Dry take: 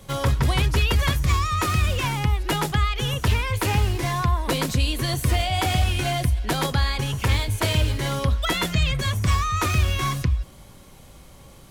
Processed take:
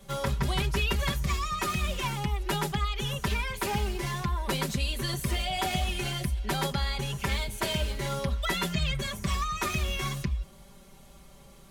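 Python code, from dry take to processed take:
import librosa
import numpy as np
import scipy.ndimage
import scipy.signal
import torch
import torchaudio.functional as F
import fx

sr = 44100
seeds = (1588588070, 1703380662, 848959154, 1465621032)

y = x + 0.87 * np.pad(x, (int(5.1 * sr / 1000.0), 0))[:len(x)]
y = y * 10.0 ** (-8.0 / 20.0)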